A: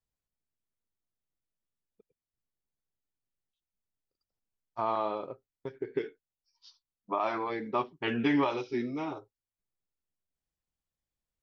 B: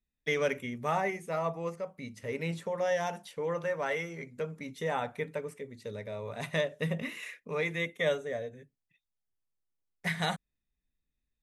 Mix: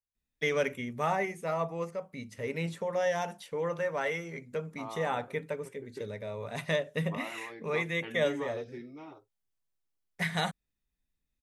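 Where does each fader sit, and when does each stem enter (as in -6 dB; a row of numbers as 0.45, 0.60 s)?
-12.0, +0.5 dB; 0.00, 0.15 s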